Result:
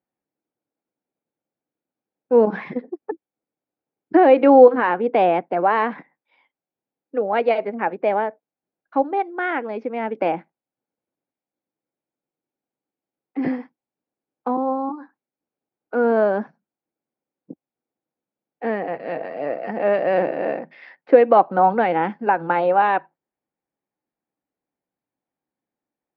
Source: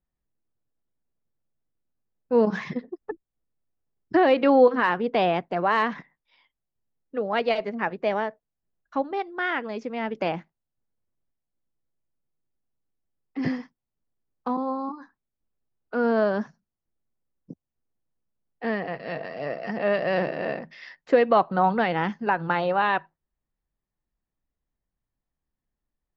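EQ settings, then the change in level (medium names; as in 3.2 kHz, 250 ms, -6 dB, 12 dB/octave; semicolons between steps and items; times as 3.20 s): cabinet simulation 250–4500 Hz, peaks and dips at 300 Hz +5 dB, 520 Hz +4 dB, 810 Hz +7 dB, 1.5 kHz +5 dB, 2.3 kHz +8 dB; tilt shelf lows +6.5 dB, about 1.2 kHz; -1.5 dB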